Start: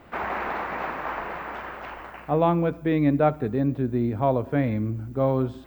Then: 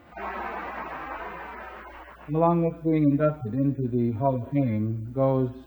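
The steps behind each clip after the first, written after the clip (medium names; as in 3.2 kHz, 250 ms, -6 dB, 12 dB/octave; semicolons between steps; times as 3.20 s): harmonic-percussive separation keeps harmonic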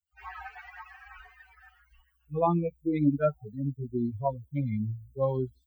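expander on every frequency bin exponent 3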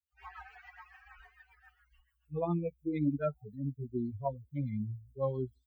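rotary cabinet horn 7 Hz; trim -4 dB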